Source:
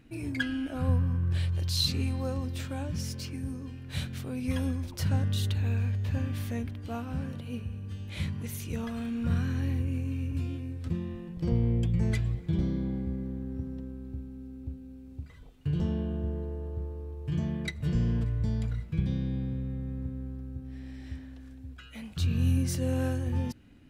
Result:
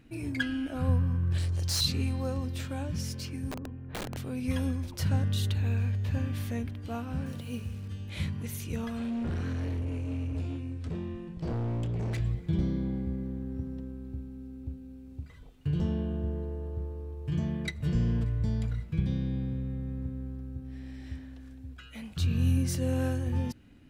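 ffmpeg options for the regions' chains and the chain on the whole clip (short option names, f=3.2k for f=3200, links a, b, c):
-filter_complex "[0:a]asettb=1/sr,asplit=3[a][b][c];[a]atrim=end=1.384[d];[b]atrim=start=1.38:end=1.81,asetpts=PTS-STARTPTS,afade=t=in:d=0.004:c=qsin,afade=t=out:st=0.426:d=0.004:c=qsin,lowpass=10k,highshelf=f=4.4k:t=q:w=1.5:g=8,volume=26dB,asoftclip=hard,volume=-26dB[e];[c]atrim=start=1.806[f];[d][e]acrossfade=d=0.004:c1=hsin:c2=qsin[g];[g][f]acrossfade=d=0.004:c1=qsin:c2=hsin,asettb=1/sr,asplit=3[h][i][j];[h]atrim=end=3.514[k];[i]atrim=start=3.51:end=4.17,asetpts=PTS-STARTPTS,afade=t=in:d=0.004:c=qsin,afade=t=out:st=0.656:d=0.004:c=qsin,lowpass=1.3k,aemphasis=mode=reproduction:type=50fm,aeval=exprs='(mod(35.5*val(0)+1,2)-1)/35.5':c=same[l];[j]atrim=start=4.166[m];[k][l]acrossfade=d=0.004:c1=hsin:c2=qsin[n];[n][m]acrossfade=d=0.004:c1=qsin:c2=hsin,asettb=1/sr,asplit=3[o][p][q];[o]atrim=end=7.264[r];[p]atrim=start=7.26:end=7.88,asetpts=PTS-STARTPTS,afade=t=in:d=0.004:c=qsin,afade=t=out:st=0.616:d=0.004:c=qsin,equalizer=f=9.1k:w=0.4:g=6.5,bandreject=f=60:t=h:w=6,bandreject=f=120:t=h:w=6,bandreject=f=180:t=h:w=6,acrusher=bits=8:mix=0:aa=0.5[s];[q]atrim=start=7.876[t];[r][s]acrossfade=d=0.004:c1=hsin:c2=qsin[u];[u][t]acrossfade=d=0.004:c1=qsin:c2=hsin,asettb=1/sr,asplit=3[v][w][x];[v]atrim=end=8.974[y];[w]atrim=start=8.97:end=12.2,asetpts=PTS-STARTPTS,afade=t=in:d=0.004:c=qsin,afade=t=out:st=3.226:d=0.004:c=qsin,lowpass=9.4k,asplit=2[z][aa];[aa]adelay=26,volume=-11dB[ab];[z][ab]amix=inputs=2:normalize=0,atrim=end_sample=142443,asoftclip=type=hard:threshold=-29.5dB[ac];[x]atrim=start=12.196[ad];[y][ac]acrossfade=d=0.004:c1=hsin:c2=qsin[ae];[ae][ad]acrossfade=d=0.004:c1=qsin:c2=hsin"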